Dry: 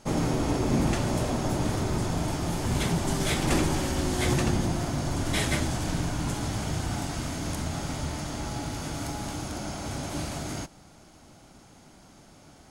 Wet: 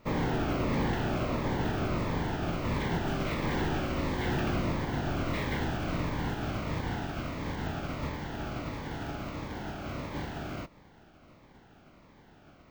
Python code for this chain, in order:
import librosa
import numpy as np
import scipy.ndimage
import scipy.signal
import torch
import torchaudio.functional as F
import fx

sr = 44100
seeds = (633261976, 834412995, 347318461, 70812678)

y = fx.spec_flatten(x, sr, power=0.57)
y = 10.0 ** (-20.5 / 20.0) * (np.abs((y / 10.0 ** (-20.5 / 20.0) + 3.0) % 4.0 - 2.0) - 1.0)
y = scipy.signal.sosfilt(scipy.signal.butter(2, 2000.0, 'lowpass', fs=sr, output='sos'), y)
y = np.repeat(y[::2], 2)[:len(y)]
y = fx.notch_cascade(y, sr, direction='falling', hz=1.5)